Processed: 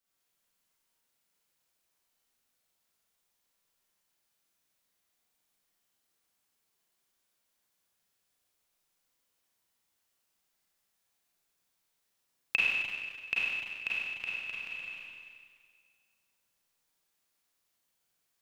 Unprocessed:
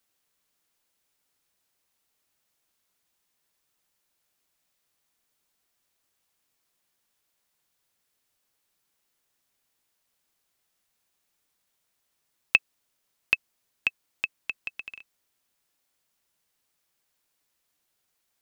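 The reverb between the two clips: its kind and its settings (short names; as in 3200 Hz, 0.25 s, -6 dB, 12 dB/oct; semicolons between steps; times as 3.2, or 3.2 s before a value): Schroeder reverb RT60 1.9 s, combs from 33 ms, DRR -7.5 dB; gain -10.5 dB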